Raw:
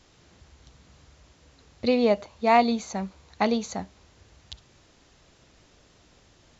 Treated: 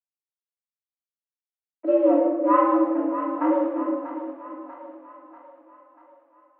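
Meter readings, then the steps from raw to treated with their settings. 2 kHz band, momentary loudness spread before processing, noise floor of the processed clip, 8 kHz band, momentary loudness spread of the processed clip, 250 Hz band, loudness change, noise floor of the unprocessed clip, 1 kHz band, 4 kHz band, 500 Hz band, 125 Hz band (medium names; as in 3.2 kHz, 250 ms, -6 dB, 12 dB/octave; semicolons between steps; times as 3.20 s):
-7.0 dB, 15 LU, under -85 dBFS, no reading, 20 LU, +5.5 dB, +2.5 dB, -59 dBFS, +1.5 dB, under -20 dB, +3.5 dB, under -25 dB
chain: level-controlled noise filter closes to 1.4 kHz; static phaser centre 450 Hz, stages 8; hysteresis with a dead band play -37 dBFS; distance through air 370 m; mistuned SSB +90 Hz 160–2500 Hz; on a send: two-band feedback delay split 590 Hz, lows 358 ms, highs 640 ms, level -10 dB; on the sum: simulated room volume 810 m³, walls mixed, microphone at 2.9 m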